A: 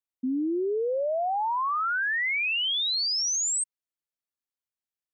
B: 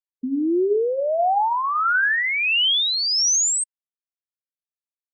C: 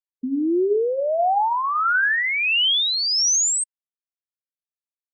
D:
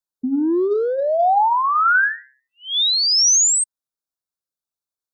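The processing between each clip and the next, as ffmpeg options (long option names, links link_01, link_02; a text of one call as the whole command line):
ffmpeg -i in.wav -af "bandreject=frequency=131.1:width_type=h:width=4,bandreject=frequency=262.2:width_type=h:width=4,bandreject=frequency=393.3:width_type=h:width=4,bandreject=frequency=524.4:width_type=h:width=4,bandreject=frequency=655.5:width_type=h:width=4,bandreject=frequency=786.6:width_type=h:width=4,bandreject=frequency=917.7:width_type=h:width=4,bandreject=frequency=1048.8:width_type=h:width=4,bandreject=frequency=1179.9:width_type=h:width=4,bandreject=frequency=1311:width_type=h:width=4,bandreject=frequency=1442.1:width_type=h:width=4,bandreject=frequency=1573.2:width_type=h:width=4,bandreject=frequency=1704.3:width_type=h:width=4,bandreject=frequency=1835.4:width_type=h:width=4,bandreject=frequency=1966.5:width_type=h:width=4,afftfilt=real='re*gte(hypot(re,im),0.00316)':imag='im*gte(hypot(re,im),0.00316)':win_size=1024:overlap=0.75,tremolo=f=1.5:d=0.4,volume=8.5dB" out.wav
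ffmpeg -i in.wav -af anull out.wav
ffmpeg -i in.wav -filter_complex "[0:a]acrossover=split=350|550|2600[link_01][link_02][link_03][link_04];[link_02]asoftclip=type=tanh:threshold=-34.5dB[link_05];[link_01][link_05][link_03][link_04]amix=inputs=4:normalize=0,asuperstop=centerf=2400:order=12:qfactor=1.3,volume=4.5dB" out.wav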